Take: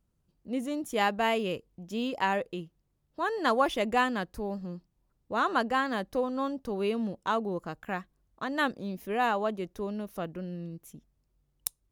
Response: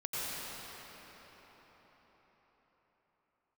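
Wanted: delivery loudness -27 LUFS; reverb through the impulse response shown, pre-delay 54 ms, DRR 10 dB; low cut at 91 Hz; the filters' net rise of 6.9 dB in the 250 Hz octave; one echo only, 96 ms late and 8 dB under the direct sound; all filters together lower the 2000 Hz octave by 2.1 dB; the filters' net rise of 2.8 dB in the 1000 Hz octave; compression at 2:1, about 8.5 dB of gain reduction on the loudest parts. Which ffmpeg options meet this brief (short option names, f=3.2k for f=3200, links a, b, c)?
-filter_complex "[0:a]highpass=91,equalizer=f=250:t=o:g=8,equalizer=f=1k:t=o:g=4,equalizer=f=2k:t=o:g=-4.5,acompressor=threshold=-34dB:ratio=2,aecho=1:1:96:0.398,asplit=2[a][b];[1:a]atrim=start_sample=2205,adelay=54[c];[b][c]afir=irnorm=-1:irlink=0,volume=-16dB[d];[a][d]amix=inputs=2:normalize=0,volume=6.5dB"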